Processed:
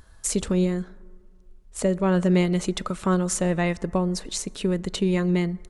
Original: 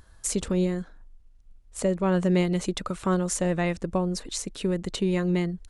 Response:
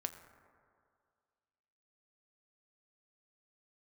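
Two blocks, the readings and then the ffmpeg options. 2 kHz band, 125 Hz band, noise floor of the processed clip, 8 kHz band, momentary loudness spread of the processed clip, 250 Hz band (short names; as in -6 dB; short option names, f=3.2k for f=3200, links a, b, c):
+2.5 dB, +3.0 dB, -51 dBFS, +2.5 dB, 8 LU, +2.5 dB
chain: -filter_complex "[0:a]asplit=2[a][b];[b]aecho=1:1:4.7:0.5[c];[1:a]atrim=start_sample=2205[d];[c][d]afir=irnorm=-1:irlink=0,volume=-9dB[e];[a][e]amix=inputs=2:normalize=0"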